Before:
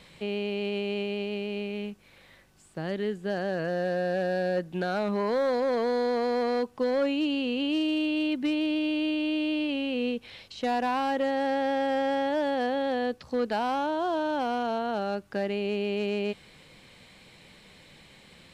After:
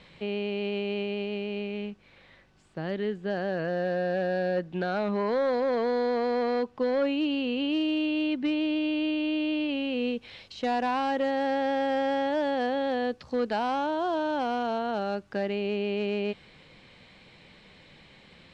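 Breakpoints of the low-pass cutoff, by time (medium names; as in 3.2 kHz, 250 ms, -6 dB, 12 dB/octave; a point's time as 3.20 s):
9.59 s 4.3 kHz
10.26 s 6.9 kHz
15.22 s 6.9 kHz
15.77 s 4.5 kHz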